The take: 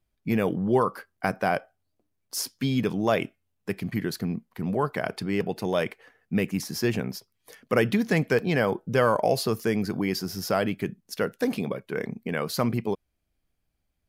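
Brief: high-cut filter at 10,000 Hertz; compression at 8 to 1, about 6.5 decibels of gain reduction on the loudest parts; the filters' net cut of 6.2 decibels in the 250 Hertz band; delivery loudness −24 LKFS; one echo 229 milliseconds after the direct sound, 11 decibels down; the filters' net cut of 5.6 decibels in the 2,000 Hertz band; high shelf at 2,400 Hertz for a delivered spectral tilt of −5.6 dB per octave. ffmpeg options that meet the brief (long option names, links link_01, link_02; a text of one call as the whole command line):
ffmpeg -i in.wav -af "lowpass=10000,equalizer=frequency=250:width_type=o:gain=-8.5,equalizer=frequency=2000:width_type=o:gain=-4,highshelf=frequency=2400:gain=-7,acompressor=threshold=-26dB:ratio=8,aecho=1:1:229:0.282,volume=10dB" out.wav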